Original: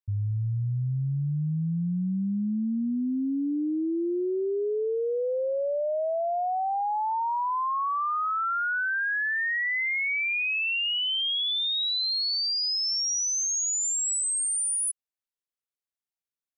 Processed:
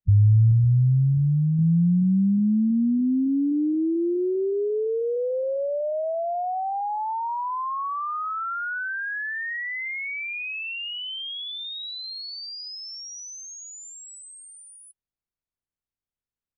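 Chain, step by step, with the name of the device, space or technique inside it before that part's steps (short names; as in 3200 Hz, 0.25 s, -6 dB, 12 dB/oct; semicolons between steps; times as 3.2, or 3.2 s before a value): clip after many re-uploads (LPF 7600 Hz; bin magnitudes rounded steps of 30 dB); RIAA curve playback; 0.51–1.59 comb 2.8 ms, depth 35%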